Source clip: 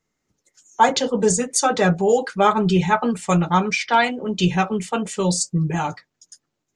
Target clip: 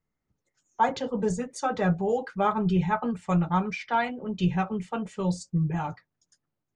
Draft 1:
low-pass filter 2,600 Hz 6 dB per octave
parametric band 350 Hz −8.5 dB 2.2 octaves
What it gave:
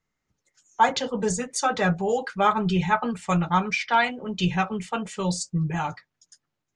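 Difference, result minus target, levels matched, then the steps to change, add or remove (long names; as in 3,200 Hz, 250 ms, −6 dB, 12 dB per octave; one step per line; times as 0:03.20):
2,000 Hz band +4.5 dB
change: low-pass filter 650 Hz 6 dB per octave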